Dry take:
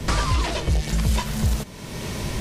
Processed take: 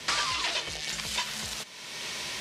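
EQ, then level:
resonant band-pass 3,600 Hz, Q 0.71
+2.5 dB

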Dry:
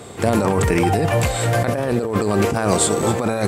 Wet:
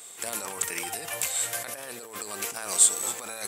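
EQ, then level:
first difference
parametric band 4,600 Hz −3 dB 0.42 octaves
+1.5 dB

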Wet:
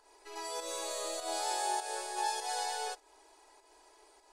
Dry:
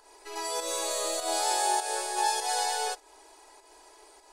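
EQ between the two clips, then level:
high-shelf EQ 10,000 Hz −5.5 dB
−6.5 dB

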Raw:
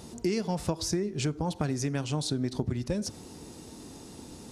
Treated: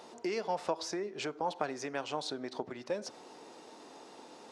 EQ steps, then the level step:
Chebyshev high-pass filter 660 Hz, order 2
head-to-tape spacing loss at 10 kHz 20 dB
+4.5 dB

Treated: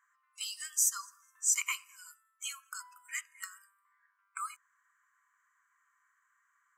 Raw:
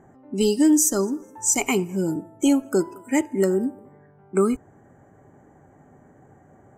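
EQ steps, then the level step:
linear-phase brick-wall high-pass 990 Hz
−7.0 dB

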